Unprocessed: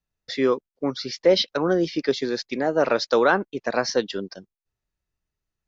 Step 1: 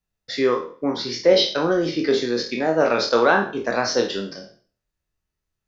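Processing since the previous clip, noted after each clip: spectral sustain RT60 0.44 s; flutter echo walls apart 4.3 m, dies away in 0.21 s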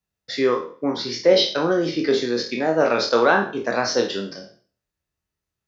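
high-pass 58 Hz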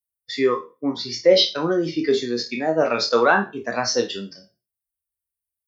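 expander on every frequency bin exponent 1.5; treble shelf 6.2 kHz +6 dB; trim +2 dB

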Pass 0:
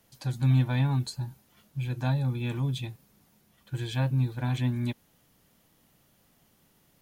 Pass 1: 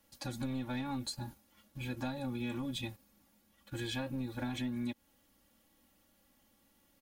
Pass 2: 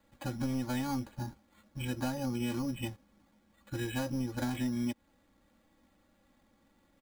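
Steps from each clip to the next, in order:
waveshaping leveller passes 1; comb 3.6 ms, depth 85%; compression 6:1, threshold -29 dBFS, peak gain reduction 8.5 dB; trim -5 dB
careless resampling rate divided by 8×, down filtered, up hold; trim +4 dB

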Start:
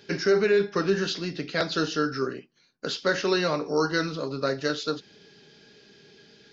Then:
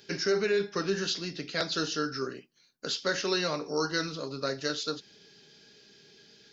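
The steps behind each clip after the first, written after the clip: treble shelf 4.4 kHz +12 dB; trim -6 dB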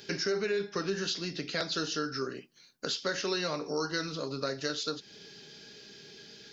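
compression 2:1, threshold -42 dBFS, peak gain reduction 10.5 dB; trim +6 dB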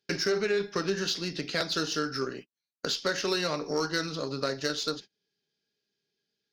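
Chebyshev shaper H 6 -29 dB, 7 -31 dB, 8 -28 dB, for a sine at -18.5 dBFS; gate -45 dBFS, range -34 dB; trim +3.5 dB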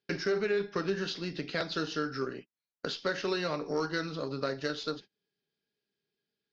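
distance through air 170 m; trim -1.5 dB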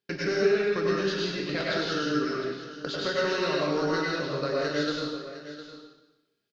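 delay 709 ms -13.5 dB; plate-style reverb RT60 1 s, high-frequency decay 0.95×, pre-delay 85 ms, DRR -4.5 dB

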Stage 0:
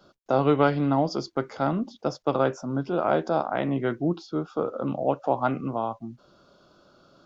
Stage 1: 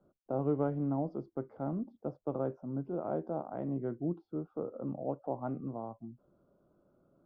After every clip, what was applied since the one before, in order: Bessel low-pass 510 Hz, order 2; trim -8 dB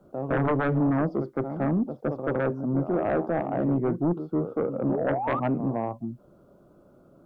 reverse echo 162 ms -11 dB; painted sound rise, 4.89–5.40 s, 340–1300 Hz -42 dBFS; sine folder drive 9 dB, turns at -19 dBFS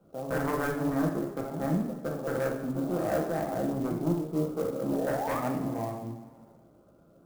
reverberation, pre-delay 3 ms, DRR -1 dB; sampling jitter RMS 0.027 ms; trim -7 dB

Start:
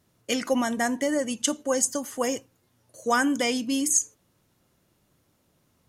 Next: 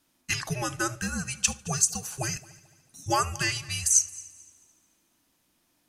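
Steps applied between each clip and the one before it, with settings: peaking EQ 230 Hz -14.5 dB 3 oct; multi-head delay 73 ms, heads first and third, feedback 50%, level -22 dB; frequency shift -370 Hz; trim +2 dB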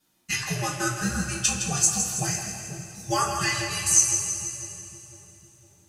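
two-band feedback delay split 520 Hz, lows 503 ms, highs 162 ms, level -8 dB; two-slope reverb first 0.24 s, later 3 s, from -18 dB, DRR -6 dB; trim -5.5 dB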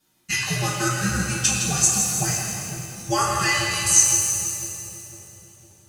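pitch-shifted reverb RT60 1.6 s, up +7 st, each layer -8 dB, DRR 3 dB; trim +2 dB

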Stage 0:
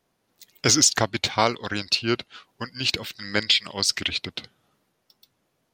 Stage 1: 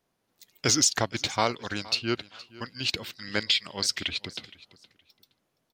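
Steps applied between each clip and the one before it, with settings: feedback delay 468 ms, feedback 23%, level -20 dB; trim -4.5 dB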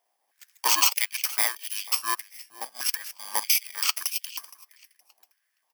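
bit-reversed sample order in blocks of 32 samples; step-sequenced high-pass 3.2 Hz 780–2800 Hz; trim +1.5 dB

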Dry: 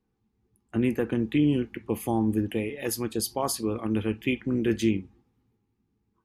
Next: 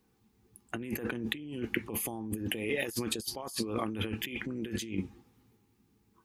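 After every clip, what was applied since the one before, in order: tilt EQ +2 dB/octave; compressor with a negative ratio -38 dBFS, ratio -1; bass shelf 390 Hz +3 dB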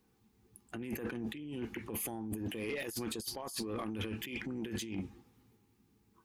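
peak limiter -24 dBFS, peak gain reduction 11 dB; saturation -29.5 dBFS, distortion -16 dB; trim -1 dB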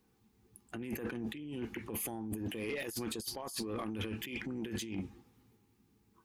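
no audible change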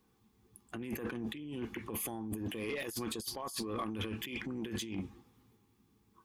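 small resonant body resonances 1.1/3.4 kHz, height 7 dB, ringing for 20 ms

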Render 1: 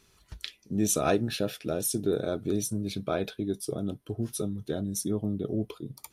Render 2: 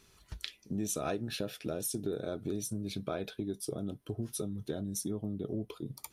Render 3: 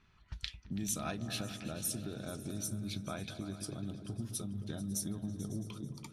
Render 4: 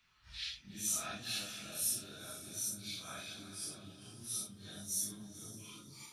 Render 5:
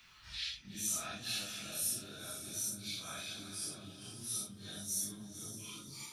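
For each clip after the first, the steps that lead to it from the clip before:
compression 3:1, threshold -34 dBFS, peak gain reduction 11 dB
peaking EQ 440 Hz -13.5 dB 1.1 oct; level-controlled noise filter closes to 2.1 kHz, open at -35.5 dBFS; delay with an opening low-pass 110 ms, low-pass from 200 Hz, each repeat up 2 oct, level -6 dB
phase randomisation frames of 200 ms; tilt shelf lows -8.5 dB; trim -4.5 dB
three bands compressed up and down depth 40%; trim +1 dB

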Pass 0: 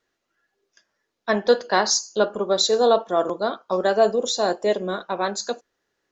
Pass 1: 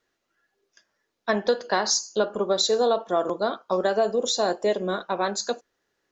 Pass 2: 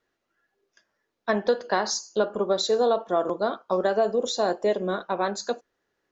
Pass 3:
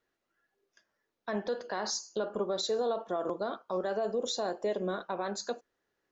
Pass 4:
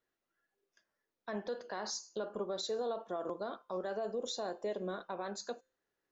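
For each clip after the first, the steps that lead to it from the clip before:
compression 5:1, threshold -18 dBFS, peak gain reduction 7 dB
treble shelf 3.4 kHz -7.5 dB
peak limiter -19 dBFS, peak gain reduction 9 dB; trim -4.5 dB
feedback comb 520 Hz, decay 0.49 s, mix 40%; trim -1.5 dB

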